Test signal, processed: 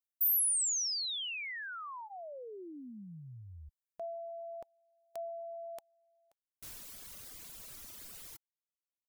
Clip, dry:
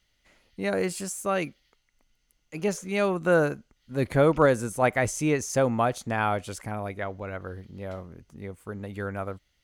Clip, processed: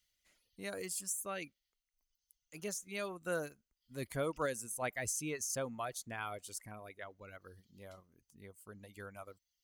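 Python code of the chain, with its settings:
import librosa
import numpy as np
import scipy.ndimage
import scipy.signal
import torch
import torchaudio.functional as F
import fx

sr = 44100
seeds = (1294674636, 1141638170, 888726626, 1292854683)

y = F.preemphasis(torch.from_numpy(x), 0.8).numpy()
y = fx.dereverb_blind(y, sr, rt60_s=1.2)
y = fx.notch(y, sr, hz=830.0, q=12.0)
y = y * librosa.db_to_amplitude(-2.0)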